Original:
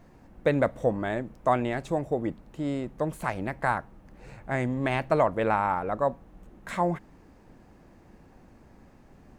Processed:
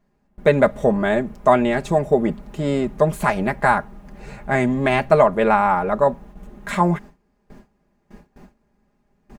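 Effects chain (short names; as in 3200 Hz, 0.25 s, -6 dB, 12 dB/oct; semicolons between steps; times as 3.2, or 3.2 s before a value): gate with hold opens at -42 dBFS; comb 4.9 ms, depth 69%; in parallel at -2 dB: vocal rider within 4 dB 0.5 s; on the sum: gain +3 dB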